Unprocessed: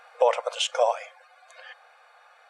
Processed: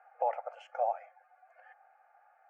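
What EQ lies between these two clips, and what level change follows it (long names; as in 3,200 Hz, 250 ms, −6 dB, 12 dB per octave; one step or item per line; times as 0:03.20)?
four-pole ladder band-pass 1,000 Hz, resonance 35%
parametric band 830 Hz +10 dB 0.46 octaves
phaser with its sweep stopped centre 1,000 Hz, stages 6
0.0 dB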